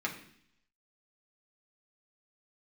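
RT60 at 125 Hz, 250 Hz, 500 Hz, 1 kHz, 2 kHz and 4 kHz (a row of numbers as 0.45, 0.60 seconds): 0.80, 0.80, 0.65, 0.60, 0.75, 0.80 seconds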